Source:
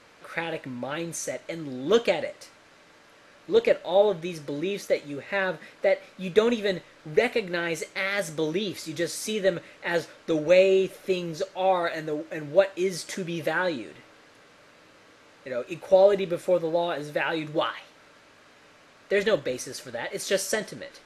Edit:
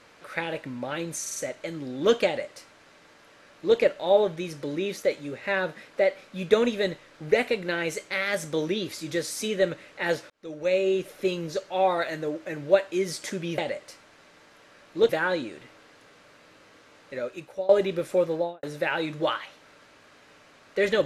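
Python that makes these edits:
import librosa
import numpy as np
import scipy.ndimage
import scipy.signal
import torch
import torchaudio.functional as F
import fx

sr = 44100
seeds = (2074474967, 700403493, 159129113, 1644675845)

y = fx.studio_fade_out(x, sr, start_s=16.67, length_s=0.3)
y = fx.edit(y, sr, fx.stutter(start_s=1.21, slice_s=0.05, count=4),
    fx.duplicate(start_s=2.11, length_s=1.51, to_s=13.43),
    fx.fade_in_span(start_s=10.15, length_s=0.85),
    fx.fade_out_to(start_s=15.51, length_s=0.52, floor_db=-21.5), tone=tone)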